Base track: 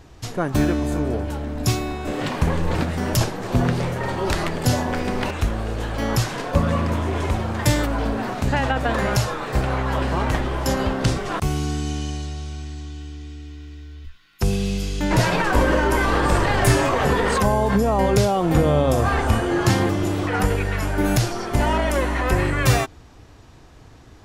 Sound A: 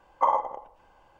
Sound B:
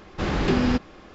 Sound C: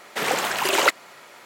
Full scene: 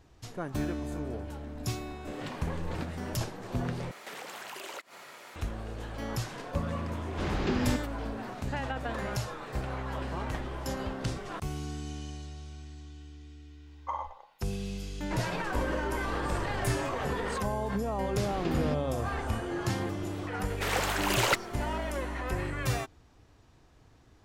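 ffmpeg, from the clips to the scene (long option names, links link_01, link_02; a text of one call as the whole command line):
ffmpeg -i bed.wav -i cue0.wav -i cue1.wav -i cue2.wav -filter_complex "[3:a]asplit=2[link_01][link_02];[2:a]asplit=2[link_03][link_04];[0:a]volume=-13dB[link_05];[link_01]acompressor=threshold=-38dB:ratio=6:attack=3.2:release=140:knee=1:detection=peak[link_06];[1:a]tiltshelf=frequency=720:gain=-9.5[link_07];[link_02]aeval=exprs='clip(val(0),-1,0.158)':channel_layout=same[link_08];[link_05]asplit=2[link_09][link_10];[link_09]atrim=end=3.914[link_11];[link_06]atrim=end=1.45,asetpts=PTS-STARTPTS,volume=-2.5dB[link_12];[link_10]atrim=start=5.356[link_13];[link_03]atrim=end=1.14,asetpts=PTS-STARTPTS,volume=-8dB,afade=type=in:duration=0.004:curve=hsin,afade=type=out:start_time=1.136:duration=0.004:curve=hsin,adelay=6990[link_14];[link_07]atrim=end=1.19,asetpts=PTS-STARTPTS,volume=-15dB,afade=type=in:duration=0.004:curve=hsin,afade=type=out:start_time=1.186:duration=0.004:curve=hsin,adelay=13660[link_15];[link_04]atrim=end=1.14,asetpts=PTS-STARTPTS,volume=-12.5dB,afade=type=in:duration=0.004:curve=hsin,afade=type=out:start_time=1.136:duration=0.004:curve=hsin,adelay=17970[link_16];[link_08]atrim=end=1.45,asetpts=PTS-STARTPTS,volume=-6.5dB,afade=type=in:duration=0.004:curve=hsin,afade=type=out:start_time=1.446:duration=0.004:curve=hsin,adelay=20450[link_17];[link_11][link_12]acrossfade=duration=0.004:curve1=hsin:curve2=hsin[link_18];[link_18][link_13]acrossfade=duration=0.004:curve1=hsin:curve2=hsin[link_19];[link_19][link_14][link_15][link_16][link_17]amix=inputs=5:normalize=0" out.wav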